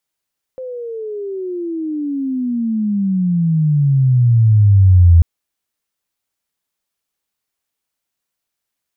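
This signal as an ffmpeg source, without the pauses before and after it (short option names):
-f lavfi -i "aevalsrc='pow(10,(-4+20.5*(t/4.64-1))/20)*sin(2*PI*522*4.64/(-32*log(2)/12)*(exp(-32*log(2)/12*t/4.64)-1))':d=4.64:s=44100"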